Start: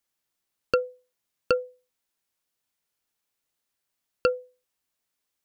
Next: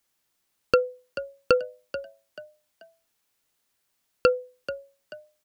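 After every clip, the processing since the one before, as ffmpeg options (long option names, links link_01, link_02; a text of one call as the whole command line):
ffmpeg -i in.wav -filter_complex "[0:a]asplit=2[link_01][link_02];[link_02]alimiter=limit=-17.5dB:level=0:latency=1:release=240,volume=1dB[link_03];[link_01][link_03]amix=inputs=2:normalize=0,asplit=4[link_04][link_05][link_06][link_07];[link_05]adelay=435,afreqshift=53,volume=-13dB[link_08];[link_06]adelay=870,afreqshift=106,volume=-22.6dB[link_09];[link_07]adelay=1305,afreqshift=159,volume=-32.3dB[link_10];[link_04][link_08][link_09][link_10]amix=inputs=4:normalize=0" out.wav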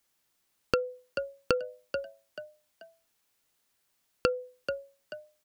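ffmpeg -i in.wav -af "acompressor=threshold=-23dB:ratio=6" out.wav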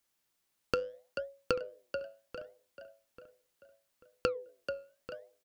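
ffmpeg -i in.wav -filter_complex "[0:a]flanger=delay=3:depth=8:regen=-85:speed=0.73:shape=sinusoidal,asplit=2[link_01][link_02];[link_02]adelay=839,lowpass=frequency=2900:poles=1,volume=-14.5dB,asplit=2[link_03][link_04];[link_04]adelay=839,lowpass=frequency=2900:poles=1,volume=0.36,asplit=2[link_05][link_06];[link_06]adelay=839,lowpass=frequency=2900:poles=1,volume=0.36[link_07];[link_01][link_03][link_05][link_07]amix=inputs=4:normalize=0" out.wav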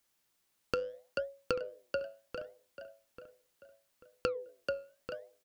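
ffmpeg -i in.wav -af "alimiter=limit=-16.5dB:level=0:latency=1:release=168,volume=2.5dB" out.wav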